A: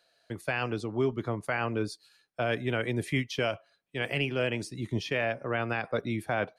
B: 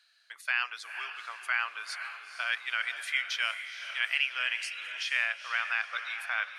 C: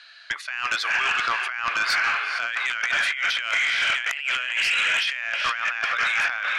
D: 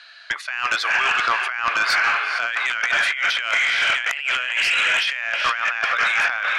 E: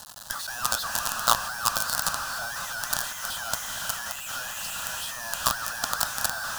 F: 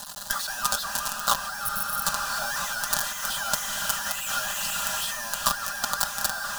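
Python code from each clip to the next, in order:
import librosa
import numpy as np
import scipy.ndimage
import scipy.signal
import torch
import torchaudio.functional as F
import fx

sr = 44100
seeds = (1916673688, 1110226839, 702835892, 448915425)

y1 = scipy.signal.sosfilt(scipy.signal.butter(4, 1300.0, 'highpass', fs=sr, output='sos'), x)
y1 = fx.high_shelf(y1, sr, hz=8700.0, db=-8.5)
y1 = fx.echo_diffused(y1, sr, ms=470, feedback_pct=45, wet_db=-9.0)
y1 = y1 * 10.0 ** (5.0 / 20.0)
y2 = scipy.signal.sosfilt(scipy.signal.butter(2, 3900.0, 'lowpass', fs=sr, output='sos'), y1)
y2 = fx.over_compress(y2, sr, threshold_db=-40.0, ratio=-1.0)
y2 = fx.fold_sine(y2, sr, drive_db=9, ceiling_db=-19.5)
y2 = y2 * 10.0 ** (3.0 / 20.0)
y3 = fx.peak_eq(y2, sr, hz=640.0, db=4.5, octaves=2.1)
y3 = y3 * 10.0 ** (2.0 / 20.0)
y4 = fx.quant_companded(y3, sr, bits=2)
y4 = fx.fixed_phaser(y4, sr, hz=920.0, stages=4)
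y4 = y4 * 10.0 ** (-2.5 / 20.0)
y5 = fx.spec_repair(y4, sr, seeds[0], start_s=1.67, length_s=0.36, low_hz=220.0, high_hz=8900.0, source='before')
y5 = y5 + 0.65 * np.pad(y5, (int(5.0 * sr / 1000.0), 0))[:len(y5)]
y5 = fx.rider(y5, sr, range_db=4, speed_s=0.5)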